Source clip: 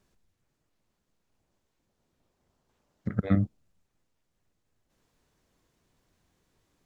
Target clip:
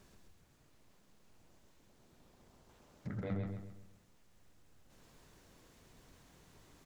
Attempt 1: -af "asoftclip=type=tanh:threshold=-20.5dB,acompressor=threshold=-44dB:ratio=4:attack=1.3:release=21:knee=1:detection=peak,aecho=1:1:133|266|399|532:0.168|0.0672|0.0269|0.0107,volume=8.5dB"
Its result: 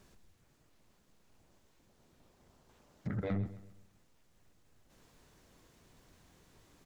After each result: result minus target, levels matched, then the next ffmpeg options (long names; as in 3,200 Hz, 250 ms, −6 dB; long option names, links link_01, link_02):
echo-to-direct −11 dB; downward compressor: peak gain reduction −5 dB
-af "asoftclip=type=tanh:threshold=-20.5dB,acompressor=threshold=-44dB:ratio=4:attack=1.3:release=21:knee=1:detection=peak,aecho=1:1:133|266|399|532|665:0.596|0.238|0.0953|0.0381|0.0152,volume=8.5dB"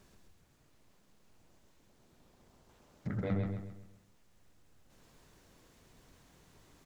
downward compressor: peak gain reduction −5 dB
-af "asoftclip=type=tanh:threshold=-20.5dB,acompressor=threshold=-50.5dB:ratio=4:attack=1.3:release=21:knee=1:detection=peak,aecho=1:1:133|266|399|532|665:0.596|0.238|0.0953|0.0381|0.0152,volume=8.5dB"